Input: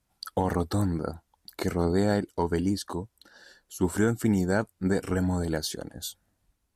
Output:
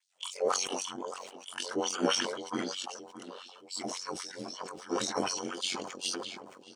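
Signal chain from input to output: short-time spectra conjugated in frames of 46 ms; high-pass 98 Hz; comb 4 ms, depth 56%; in parallel at -2 dB: compression, threshold -32 dBFS, peak gain reduction 12 dB; on the sum: LFO high-pass sine 3.8 Hz 540–7100 Hz; formant shift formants -6 st; ring modulator 46 Hz; on a send: filtered feedback delay 620 ms, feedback 55%, low-pass 1.9 kHz, level -13 dB; on the sum: decay stretcher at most 43 dB/s; trim -1 dB

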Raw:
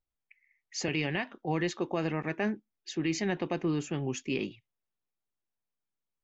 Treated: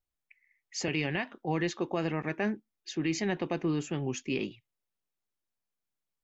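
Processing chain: vibrato 1.6 Hz 24 cents

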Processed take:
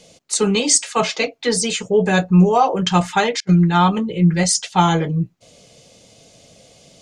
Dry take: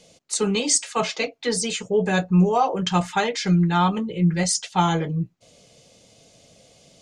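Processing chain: 3.40–3.82 s: gate -22 dBFS, range -34 dB; trim +5 dB

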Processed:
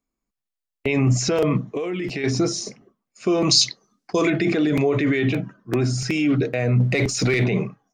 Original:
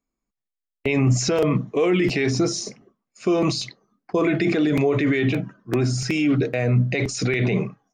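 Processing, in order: 1.59–2.24 s: compression 6:1, threshold -24 dBFS, peak gain reduction 8.5 dB; 3.51–4.30 s: peaking EQ 5.8 kHz +14.5 dB 1.7 oct; 6.80–7.44 s: waveshaping leveller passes 1

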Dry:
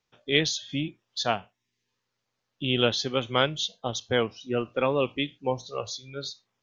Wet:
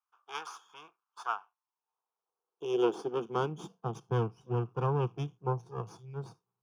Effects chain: half-wave rectifier; high-pass sweep 1.2 kHz -> 110 Hz, 1.37–4.24 s; boxcar filter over 11 samples; static phaser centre 390 Hz, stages 8

